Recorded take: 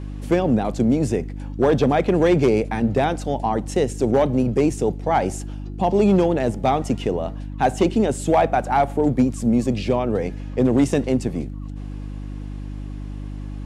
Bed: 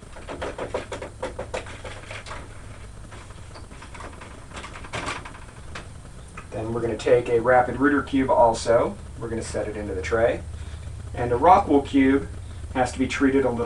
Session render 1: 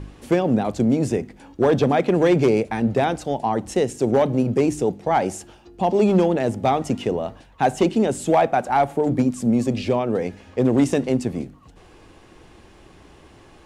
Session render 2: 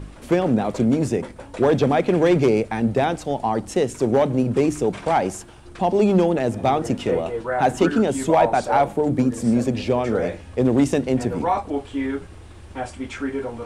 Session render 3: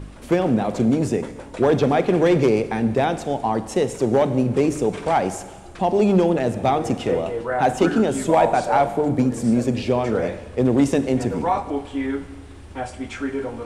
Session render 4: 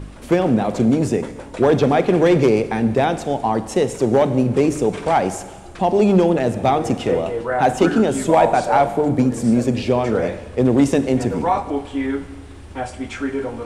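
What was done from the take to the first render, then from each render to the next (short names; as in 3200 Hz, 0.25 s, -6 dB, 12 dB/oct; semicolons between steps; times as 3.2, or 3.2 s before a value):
de-hum 50 Hz, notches 6
add bed -7 dB
Schroeder reverb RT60 1.4 s, combs from 32 ms, DRR 12 dB
gain +2.5 dB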